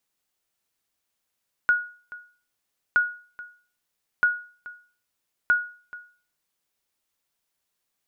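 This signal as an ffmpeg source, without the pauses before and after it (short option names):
-f lavfi -i "aevalsrc='0.237*(sin(2*PI*1450*mod(t,1.27))*exp(-6.91*mod(t,1.27)/0.41)+0.106*sin(2*PI*1450*max(mod(t,1.27)-0.43,0))*exp(-6.91*max(mod(t,1.27)-0.43,0)/0.41))':d=5.08:s=44100"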